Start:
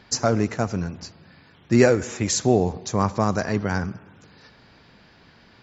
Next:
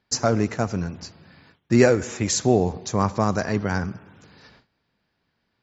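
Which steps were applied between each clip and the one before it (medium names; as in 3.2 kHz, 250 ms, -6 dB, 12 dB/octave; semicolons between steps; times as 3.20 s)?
gate with hold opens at -41 dBFS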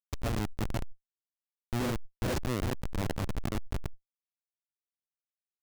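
chunks repeated in reverse 260 ms, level -1 dB; Schmitt trigger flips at -14.5 dBFS; decay stretcher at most 28 dB/s; trim -8.5 dB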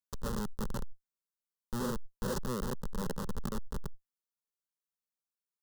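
static phaser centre 460 Hz, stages 8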